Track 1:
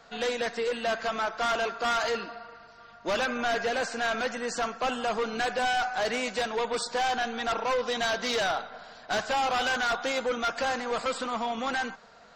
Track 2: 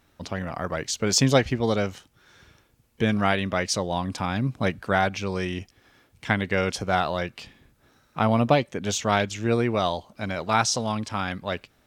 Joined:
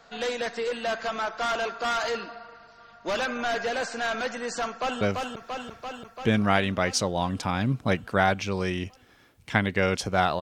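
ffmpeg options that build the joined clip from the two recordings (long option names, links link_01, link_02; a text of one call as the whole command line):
ffmpeg -i cue0.wav -i cue1.wav -filter_complex "[0:a]apad=whole_dur=10.41,atrim=end=10.41,atrim=end=5.012[link_01];[1:a]atrim=start=1.758:end=7.16[link_02];[link_01][link_02]acrossfade=duration=0.004:curve1=hsin:curve2=hsin,asplit=2[link_03][link_04];[link_04]afade=type=in:start_time=4.68:duration=0.01,afade=type=out:start_time=5.01:duration=0.01,aecho=0:1:340|680|1020|1360|1700|2040|2380|2720|3060|3400|3740|4080:0.707946|0.530959|0.39822|0.298665|0.223998|0.167999|0.125999|0.0944994|0.0708745|0.0531559|0.0398669|0.0299002[link_05];[link_03][link_05]amix=inputs=2:normalize=0" out.wav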